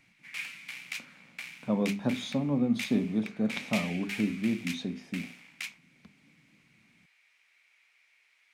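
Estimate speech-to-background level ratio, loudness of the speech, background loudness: 9.0 dB, -31.0 LUFS, -40.0 LUFS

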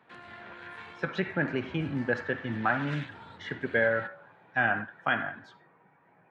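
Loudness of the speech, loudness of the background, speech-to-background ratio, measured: -30.5 LUFS, -46.0 LUFS, 15.5 dB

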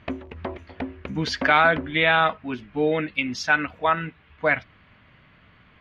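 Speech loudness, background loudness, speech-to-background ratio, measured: -22.5 LUFS, -35.5 LUFS, 13.0 dB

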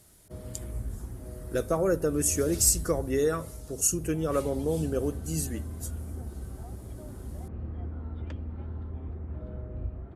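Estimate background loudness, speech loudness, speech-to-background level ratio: -39.5 LUFS, -27.5 LUFS, 12.0 dB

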